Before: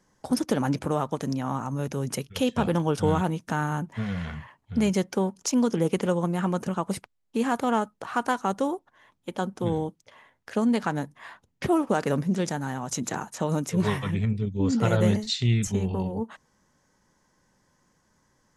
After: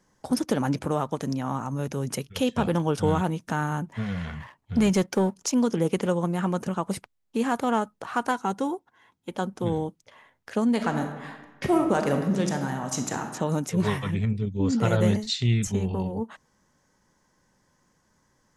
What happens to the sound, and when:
0:04.40–0:05.36: leveller curve on the samples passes 1
0:08.31–0:09.31: notch comb filter 600 Hz
0:10.70–0:13.27: thrown reverb, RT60 1.2 s, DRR 4.5 dB

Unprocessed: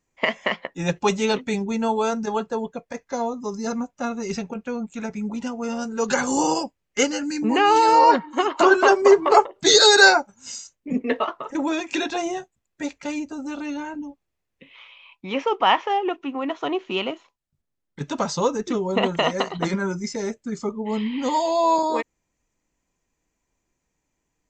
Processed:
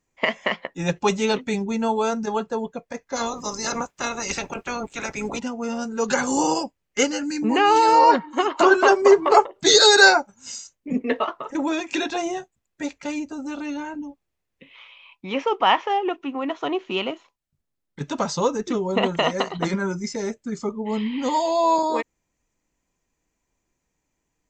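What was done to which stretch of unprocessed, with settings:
0:03.15–0:05.38: ceiling on every frequency bin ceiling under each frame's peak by 23 dB

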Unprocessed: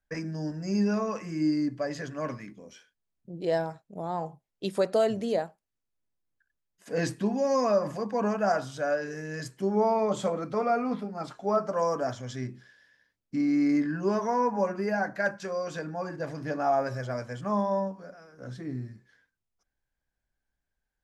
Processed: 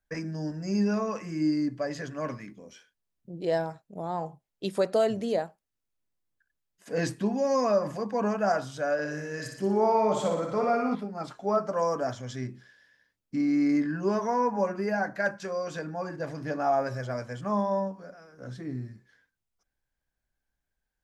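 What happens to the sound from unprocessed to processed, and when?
0:08.93–0:10.95: flutter between parallel walls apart 10.3 metres, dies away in 0.74 s

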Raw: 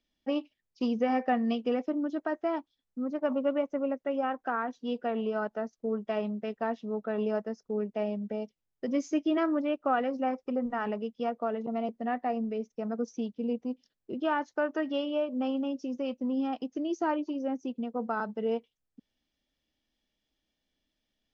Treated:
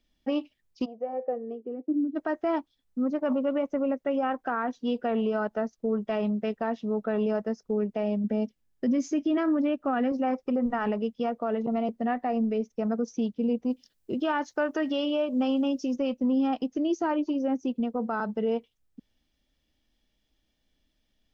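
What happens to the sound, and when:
0:00.84–0:02.15: resonant band-pass 730 Hz → 250 Hz, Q 6.2
0:08.24–0:10.12: hollow resonant body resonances 240/1,700 Hz, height 8 dB
0:13.70–0:15.96: high-shelf EQ 3,900 Hz +9 dB
whole clip: low-shelf EQ 110 Hz +9.5 dB; brickwall limiter −23.5 dBFS; level +4.5 dB

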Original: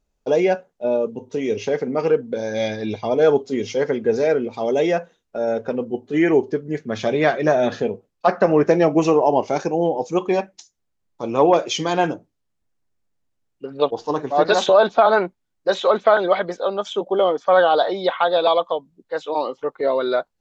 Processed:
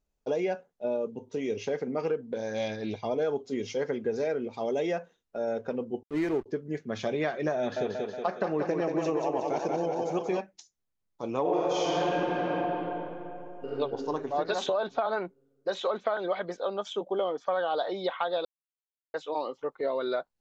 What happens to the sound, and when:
0:02.20–0:02.95: highs frequency-modulated by the lows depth 0.1 ms
0:06.03–0:06.46: slack as between gear wheels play −21.5 dBFS
0:07.58–0:10.39: feedback echo with a high-pass in the loop 183 ms, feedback 62%, high-pass 160 Hz, level −4 dB
0:11.41–0:13.78: thrown reverb, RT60 2.8 s, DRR −10.5 dB
0:18.45–0:19.14: silence
whole clip: downward compressor, threshold −17 dBFS; level −8 dB

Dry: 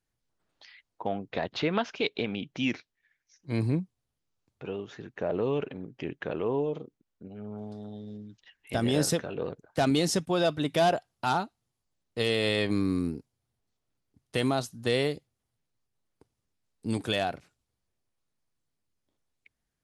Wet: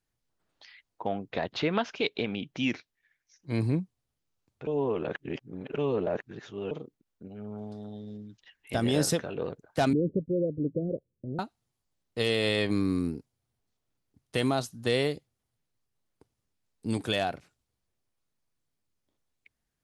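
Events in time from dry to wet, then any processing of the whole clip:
0:04.67–0:06.71: reverse
0:09.93–0:11.39: Butterworth low-pass 550 Hz 96 dB per octave

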